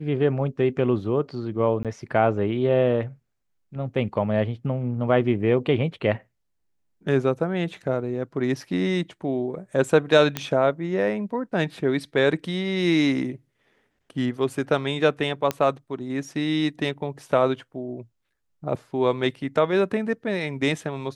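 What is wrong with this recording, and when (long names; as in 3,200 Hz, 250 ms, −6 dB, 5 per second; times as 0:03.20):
0:01.83–0:01.85: drop-out 17 ms
0:10.37: click −9 dBFS
0:15.51: click −10 dBFS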